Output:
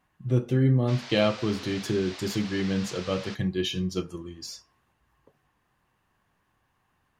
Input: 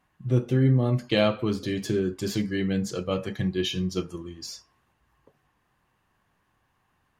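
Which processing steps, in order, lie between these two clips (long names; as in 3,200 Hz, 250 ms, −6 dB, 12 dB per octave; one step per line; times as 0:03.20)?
0:00.87–0:03.34: noise in a band 470–5,100 Hz −42 dBFS
level −1 dB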